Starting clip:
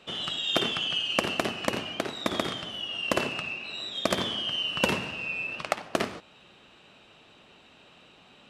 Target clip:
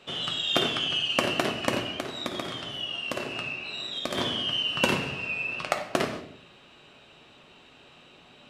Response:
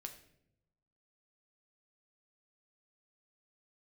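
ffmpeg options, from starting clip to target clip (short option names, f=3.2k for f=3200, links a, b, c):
-filter_complex "[0:a]asettb=1/sr,asplit=3[a][b][c];[a]atrim=end=1.894[d];[b]atrim=start=1.89:end=4.15,asetpts=PTS-STARTPTS,afade=t=in:d=0.004:c=qsin,afade=t=out:st=2.256:d=0.004:c=qsin,acompressor=threshold=-31dB:ratio=3[e];[c]atrim=start=4.146[f];[d][e]acrossfade=d=0.004:c1=hsin:c2=qsin[g];[g][f]acrossfade=d=0.004:c1=qsin:c2=hsin[h];[1:a]atrim=start_sample=2205,afade=t=out:st=0.44:d=0.01,atrim=end_sample=19845[i];[h][i]afir=irnorm=-1:irlink=0,volume=6dB"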